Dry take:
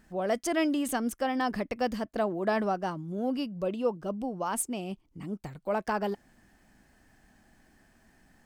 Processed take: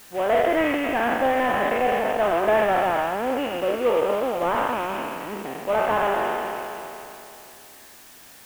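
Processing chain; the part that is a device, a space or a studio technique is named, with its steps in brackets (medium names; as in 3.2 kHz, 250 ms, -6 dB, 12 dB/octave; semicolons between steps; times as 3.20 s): spectral sustain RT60 2.95 s; army field radio (band-pass 350–3000 Hz; CVSD coder 16 kbps; white noise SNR 24 dB); trim +6 dB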